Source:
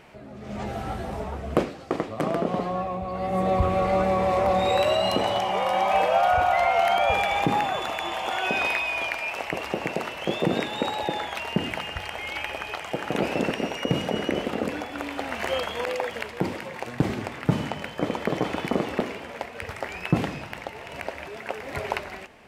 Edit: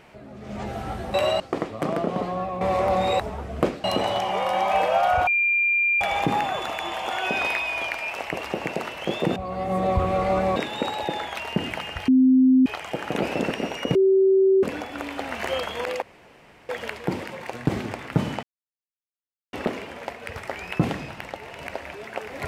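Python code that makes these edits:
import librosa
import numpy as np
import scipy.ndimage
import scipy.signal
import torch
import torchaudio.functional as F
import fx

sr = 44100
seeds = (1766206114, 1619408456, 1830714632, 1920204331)

y = fx.edit(x, sr, fx.swap(start_s=1.14, length_s=0.64, other_s=4.78, other_length_s=0.26),
    fx.move(start_s=2.99, length_s=1.2, to_s=10.56),
    fx.bleep(start_s=6.47, length_s=0.74, hz=2390.0, db=-18.0),
    fx.bleep(start_s=12.08, length_s=0.58, hz=259.0, db=-12.5),
    fx.bleep(start_s=13.95, length_s=0.68, hz=384.0, db=-14.0),
    fx.insert_room_tone(at_s=16.02, length_s=0.67),
    fx.silence(start_s=17.76, length_s=1.1), tone=tone)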